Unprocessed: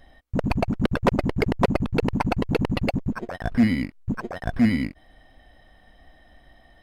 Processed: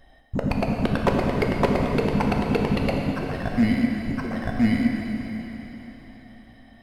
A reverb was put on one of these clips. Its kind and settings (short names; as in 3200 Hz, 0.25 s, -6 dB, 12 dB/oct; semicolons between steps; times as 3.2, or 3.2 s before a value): plate-style reverb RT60 3.9 s, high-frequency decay 1×, DRR 0 dB; gain -2 dB